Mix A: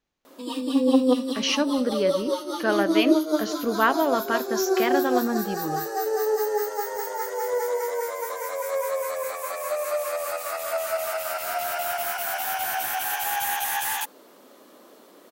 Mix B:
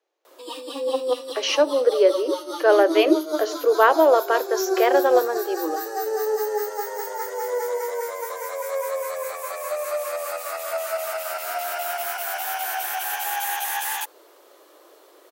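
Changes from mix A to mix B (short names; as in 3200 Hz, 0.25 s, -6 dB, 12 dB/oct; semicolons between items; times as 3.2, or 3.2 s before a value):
speech: add bell 520 Hz +10.5 dB 1.7 oct; master: add steep high-pass 320 Hz 72 dB/oct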